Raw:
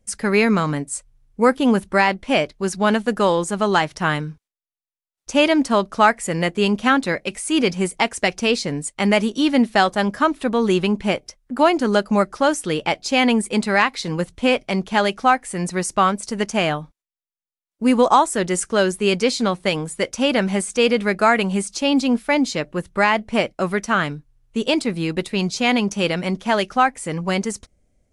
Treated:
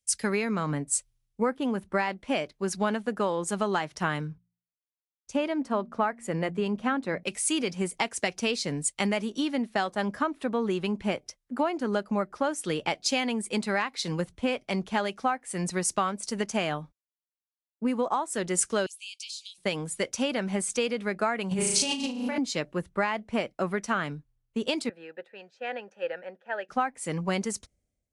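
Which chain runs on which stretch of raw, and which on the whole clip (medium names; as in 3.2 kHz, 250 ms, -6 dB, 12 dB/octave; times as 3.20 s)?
4.27–7.23 s: treble shelf 2.2 kHz -7.5 dB + de-hum 58.38 Hz, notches 4
18.86–19.58 s: steep high-pass 2.5 kHz 72 dB/octave + compression 16:1, threshold -30 dBFS
21.51–22.38 s: flutter echo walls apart 6.3 m, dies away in 1.1 s + compressor with a negative ratio -22 dBFS
24.89–26.69 s: block-companded coder 7-bit + vowel filter e + high-order bell 1.1 kHz +15 dB 1.3 oct
whole clip: high-pass 75 Hz 6 dB/octave; compression 10:1, threshold -21 dBFS; three bands expanded up and down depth 70%; trim -3 dB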